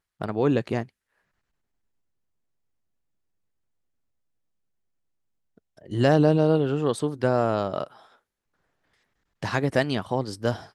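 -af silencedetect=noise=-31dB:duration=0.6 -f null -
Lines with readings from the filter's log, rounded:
silence_start: 0.83
silence_end: 5.92 | silence_duration: 5.09
silence_start: 7.84
silence_end: 9.43 | silence_duration: 1.59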